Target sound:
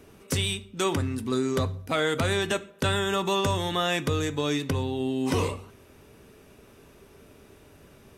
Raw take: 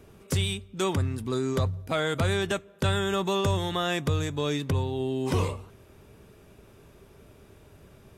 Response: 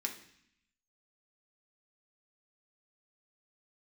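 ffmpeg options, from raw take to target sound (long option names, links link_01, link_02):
-filter_complex "[0:a]asplit=2[link_01][link_02];[1:a]atrim=start_sample=2205,afade=type=out:start_time=0.21:duration=0.01,atrim=end_sample=9702,asetrate=48510,aresample=44100[link_03];[link_02][link_03]afir=irnorm=-1:irlink=0,volume=-5.5dB[link_04];[link_01][link_04]amix=inputs=2:normalize=0"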